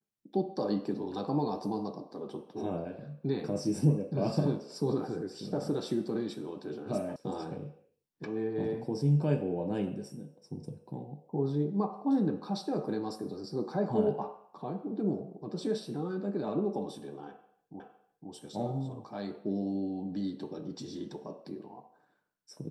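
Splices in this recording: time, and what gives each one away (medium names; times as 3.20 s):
7.16 s: sound stops dead
17.80 s: repeat of the last 0.51 s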